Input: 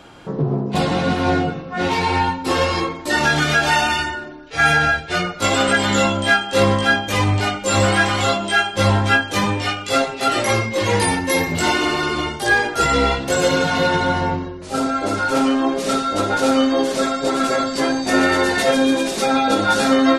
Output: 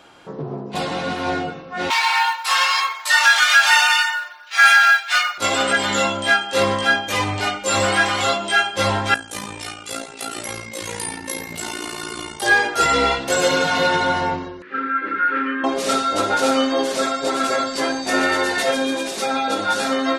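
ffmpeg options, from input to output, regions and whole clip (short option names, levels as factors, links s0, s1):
-filter_complex "[0:a]asettb=1/sr,asplit=3[s0][s1][s2];[s0]atrim=end=1.904[s3];[s1]atrim=start=1.9:end=5.38,asetpts=PTS-STARTPTS,afade=t=in:d=0.004:c=qsin,afade=t=out:st=3.476:d=0.004:c=qsin,highpass=f=1000:w=0.5412,highpass=f=1000:w=1.3066,acrusher=bits=7:mode=log:mix=0:aa=0.000001,acontrast=76[s4];[s2]atrim=start=5.376[s5];[s3][s4]acrossfade=d=0.004:c1=hsin:c2=qsin[s6];[s6][s5]acrossfade=d=0.004:c1=qsin:c2=hsin,asettb=1/sr,asplit=3[s7][s8][s9];[s7]atrim=end=9.144[s10];[s8]atrim=start=9.14:end=12.42,asetpts=PTS-STARTPTS,afade=t=in:d=0.004:c=qsin,afade=t=out:st=3.276:d=0.004:c=qsin,equalizer=f=10000:t=o:w=1:g=14.5,acrossover=split=330|1100|6000[s11][s12][s13][s14];[s11]acompressor=threshold=0.0501:ratio=3[s15];[s12]acompressor=threshold=0.0158:ratio=3[s16];[s13]acompressor=threshold=0.0251:ratio=3[s17];[s14]acompressor=threshold=0.02:ratio=3[s18];[s15][s16][s17][s18]amix=inputs=4:normalize=0,tremolo=f=57:d=0.75[s19];[s9]atrim=start=12.416[s20];[s10][s19]acrossfade=d=0.004:c1=hsin:c2=qsin[s21];[s21][s20]acrossfade=d=0.004:c1=qsin:c2=hsin,asettb=1/sr,asplit=3[s22][s23][s24];[s22]atrim=end=14.624[s25];[s23]atrim=start=14.62:end=15.64,asetpts=PTS-STARTPTS,afade=t=in:d=0.004:c=qsin,afade=t=out:st=1.016:d=0.004:c=qsin,asuperstop=centerf=690:order=4:qfactor=0.89,highpass=320,equalizer=f=420:t=q:w=4:g=-4,equalizer=f=660:t=q:w=4:g=9,equalizer=f=1000:t=q:w=4:g=-6,equalizer=f=1700:t=q:w=4:g=9,lowpass=f=2200:w=0.5412,lowpass=f=2200:w=1.3066[s26];[s24]atrim=start=15.636[s27];[s25][s26]acrossfade=d=0.004:c1=hsin:c2=qsin[s28];[s28][s27]acrossfade=d=0.004:c1=qsin:c2=hsin,dynaudnorm=f=120:g=31:m=3.76,lowshelf=f=260:g=-11.5,volume=0.75"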